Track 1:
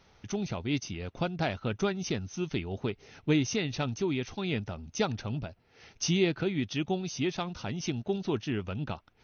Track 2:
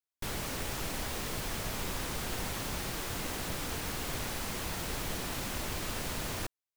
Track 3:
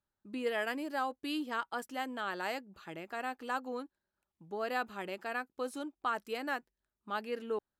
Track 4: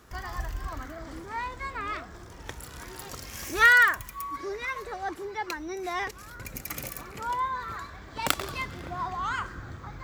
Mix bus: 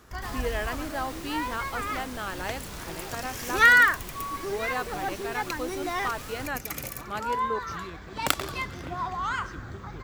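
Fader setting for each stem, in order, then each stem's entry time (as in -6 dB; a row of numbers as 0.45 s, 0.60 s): -17.0 dB, -5.5 dB, +2.5 dB, +1.0 dB; 1.65 s, 0.00 s, 0.00 s, 0.00 s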